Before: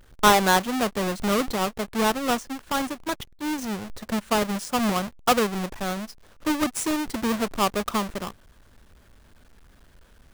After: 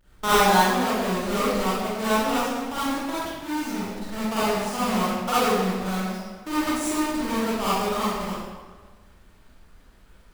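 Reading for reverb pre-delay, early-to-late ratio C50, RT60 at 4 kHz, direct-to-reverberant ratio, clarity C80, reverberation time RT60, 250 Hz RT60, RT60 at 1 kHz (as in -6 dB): 39 ms, -7.5 dB, 1.0 s, -11.5 dB, -2.0 dB, 1.4 s, 1.4 s, 1.4 s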